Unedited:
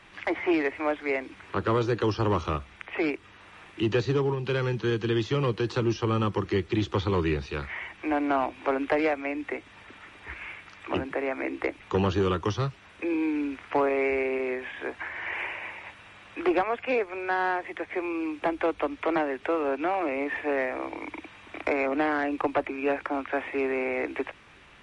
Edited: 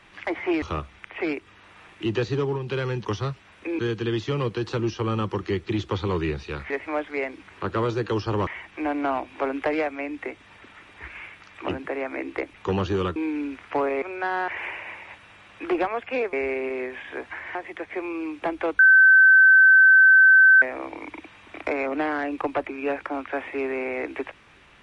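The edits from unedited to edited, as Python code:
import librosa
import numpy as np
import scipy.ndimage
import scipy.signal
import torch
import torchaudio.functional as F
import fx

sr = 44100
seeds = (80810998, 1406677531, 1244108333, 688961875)

y = fx.edit(x, sr, fx.move(start_s=0.62, length_s=1.77, to_s=7.73),
    fx.move(start_s=12.42, length_s=0.74, to_s=4.82),
    fx.swap(start_s=14.02, length_s=1.22, other_s=17.09, other_length_s=0.46),
    fx.bleep(start_s=18.79, length_s=1.83, hz=1540.0, db=-10.0), tone=tone)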